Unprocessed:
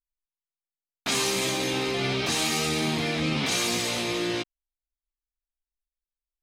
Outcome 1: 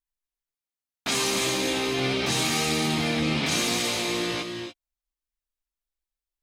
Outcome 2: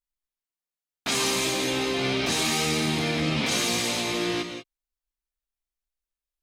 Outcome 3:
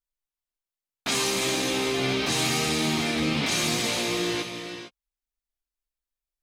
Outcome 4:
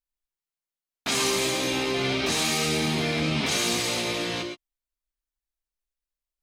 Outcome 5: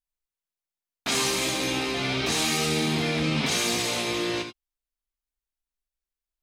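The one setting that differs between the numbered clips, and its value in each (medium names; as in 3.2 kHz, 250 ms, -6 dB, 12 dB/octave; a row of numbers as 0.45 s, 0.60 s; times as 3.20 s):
gated-style reverb, gate: 310 ms, 210 ms, 480 ms, 140 ms, 100 ms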